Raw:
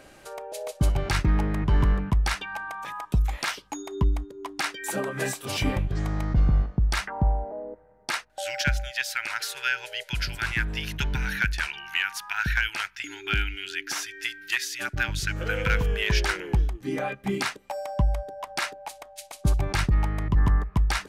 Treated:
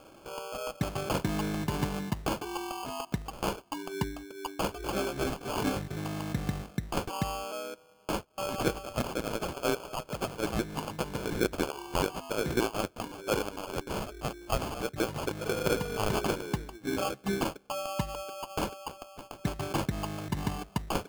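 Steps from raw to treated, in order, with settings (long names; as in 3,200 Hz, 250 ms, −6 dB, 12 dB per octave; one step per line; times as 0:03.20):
high-pass filter 160 Hz 12 dB per octave
decimation without filtering 23×
level −2 dB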